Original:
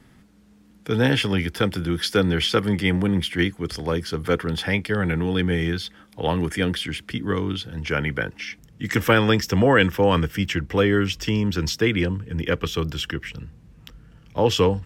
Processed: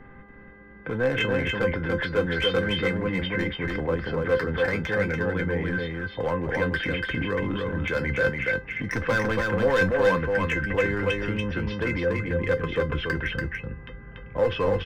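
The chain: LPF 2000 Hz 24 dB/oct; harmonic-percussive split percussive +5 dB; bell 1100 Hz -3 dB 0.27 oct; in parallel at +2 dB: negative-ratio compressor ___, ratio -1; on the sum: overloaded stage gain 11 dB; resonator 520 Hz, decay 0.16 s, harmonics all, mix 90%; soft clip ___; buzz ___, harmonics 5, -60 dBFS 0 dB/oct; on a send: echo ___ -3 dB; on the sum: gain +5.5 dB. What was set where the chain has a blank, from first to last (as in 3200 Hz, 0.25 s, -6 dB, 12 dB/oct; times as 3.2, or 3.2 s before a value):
-29 dBFS, -17.5 dBFS, 400 Hz, 0.287 s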